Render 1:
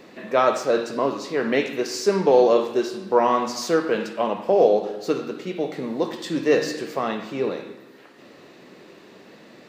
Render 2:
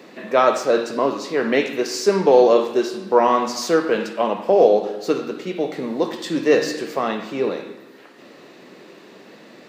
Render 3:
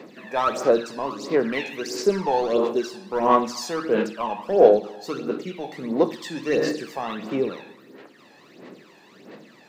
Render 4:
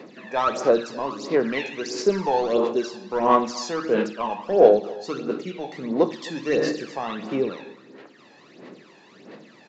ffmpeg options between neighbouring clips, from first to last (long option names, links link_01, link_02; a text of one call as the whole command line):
ffmpeg -i in.wav -af "highpass=150,volume=3dB" out.wav
ffmpeg -i in.wav -filter_complex "[0:a]asplit=2[link_01][link_02];[link_02]asoftclip=type=hard:threshold=-16.5dB,volume=-8.5dB[link_03];[link_01][link_03]amix=inputs=2:normalize=0,aphaser=in_gain=1:out_gain=1:delay=1.2:decay=0.66:speed=1.5:type=sinusoidal,volume=-9.5dB" out.wav
ffmpeg -i in.wav -af "aecho=1:1:263:0.075,aresample=16000,aresample=44100" out.wav